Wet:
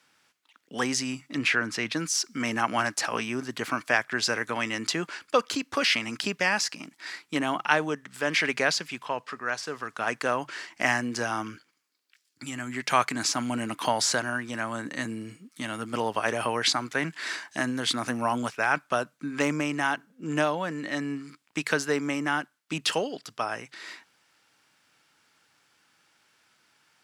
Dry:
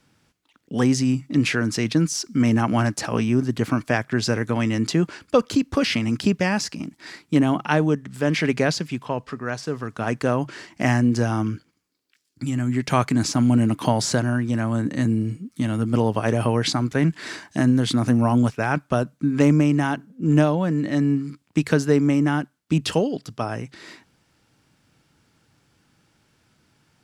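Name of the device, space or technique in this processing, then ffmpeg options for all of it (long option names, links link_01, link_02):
filter by subtraction: -filter_complex "[0:a]asplit=2[link_01][link_02];[link_02]lowpass=1500,volume=-1[link_03];[link_01][link_03]amix=inputs=2:normalize=0,asettb=1/sr,asplit=3[link_04][link_05][link_06];[link_04]atrim=end=1.384[link_07];[link_05]atrim=start=1.38:end=1.93,asetpts=PTS-STARTPTS,afade=type=in:duration=0.004:curve=qsin,afade=type=out:start_time=0.546:duration=0.004:curve=qsin,bass=frequency=250:gain=3,treble=frequency=4000:gain=-8[link_08];[link_06]atrim=start=1.926[link_09];[link_07][link_08]acrossfade=duration=0.004:curve1=hsin:curve2=qsin[link_10];[link_10][link_09]acrossfade=duration=0.004:curve1=qsin:curve2=hsin"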